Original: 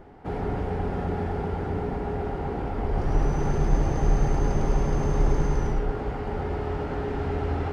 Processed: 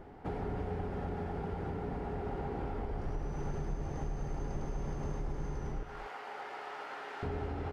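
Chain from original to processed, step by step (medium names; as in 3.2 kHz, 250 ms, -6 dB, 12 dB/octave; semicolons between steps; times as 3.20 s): 5.83–7.23 s: high-pass 1 kHz 12 dB/octave; compression 6:1, threshold -31 dBFS, peak gain reduction 15.5 dB; delay 236 ms -11.5 dB; trim -3 dB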